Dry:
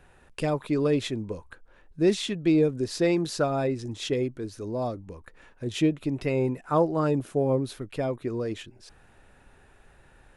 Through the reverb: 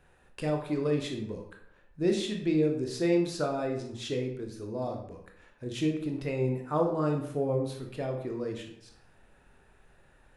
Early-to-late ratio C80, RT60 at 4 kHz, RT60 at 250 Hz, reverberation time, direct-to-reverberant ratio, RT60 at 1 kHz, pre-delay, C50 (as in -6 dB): 9.5 dB, 0.50 s, 0.65 s, 0.70 s, 2.5 dB, 0.70 s, 20 ms, 6.5 dB